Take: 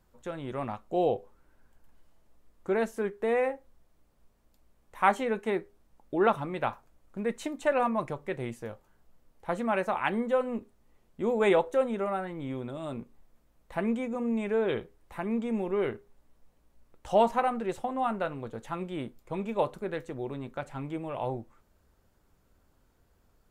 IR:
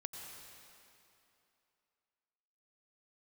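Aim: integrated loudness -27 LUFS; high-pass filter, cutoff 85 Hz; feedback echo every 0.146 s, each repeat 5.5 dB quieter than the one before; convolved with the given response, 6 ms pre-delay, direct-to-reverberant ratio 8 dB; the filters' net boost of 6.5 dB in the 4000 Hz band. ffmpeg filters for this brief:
-filter_complex "[0:a]highpass=85,equalizer=f=4k:t=o:g=8.5,aecho=1:1:146|292|438|584|730|876|1022:0.531|0.281|0.149|0.079|0.0419|0.0222|0.0118,asplit=2[a][b];[1:a]atrim=start_sample=2205,adelay=6[c];[b][c]afir=irnorm=-1:irlink=0,volume=-6dB[d];[a][d]amix=inputs=2:normalize=0,volume=2dB"

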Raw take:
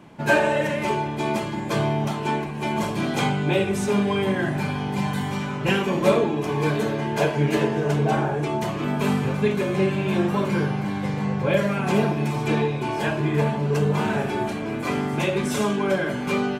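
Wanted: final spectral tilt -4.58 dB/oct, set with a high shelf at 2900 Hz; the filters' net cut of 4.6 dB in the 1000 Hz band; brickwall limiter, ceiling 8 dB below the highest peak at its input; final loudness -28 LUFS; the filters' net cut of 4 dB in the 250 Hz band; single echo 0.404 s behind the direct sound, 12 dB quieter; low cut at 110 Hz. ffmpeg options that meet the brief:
-af "highpass=110,equalizer=f=250:t=o:g=-5,equalizer=f=1k:t=o:g=-6.5,highshelf=f=2.9k:g=8.5,alimiter=limit=-16dB:level=0:latency=1,aecho=1:1:404:0.251,volume=-2dB"

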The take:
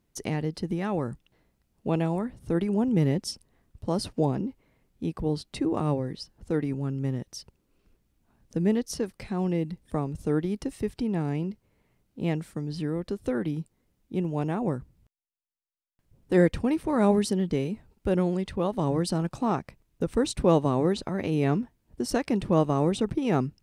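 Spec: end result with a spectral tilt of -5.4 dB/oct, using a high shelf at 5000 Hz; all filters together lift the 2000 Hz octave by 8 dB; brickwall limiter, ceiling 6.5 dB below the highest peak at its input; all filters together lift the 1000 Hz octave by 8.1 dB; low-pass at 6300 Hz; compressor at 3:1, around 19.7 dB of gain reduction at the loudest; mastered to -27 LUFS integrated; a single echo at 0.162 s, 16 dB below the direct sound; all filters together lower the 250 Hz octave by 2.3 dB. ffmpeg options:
-af "lowpass=6.3k,equalizer=f=250:t=o:g=-4,equalizer=f=1k:t=o:g=9,equalizer=f=2k:t=o:g=6,highshelf=f=5k:g=6.5,acompressor=threshold=-42dB:ratio=3,alimiter=level_in=7dB:limit=-24dB:level=0:latency=1,volume=-7dB,aecho=1:1:162:0.158,volume=16dB"

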